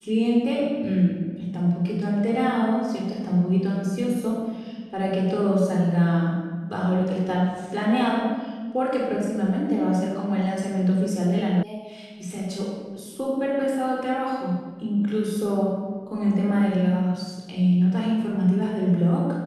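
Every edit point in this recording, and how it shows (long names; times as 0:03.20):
0:11.63: cut off before it has died away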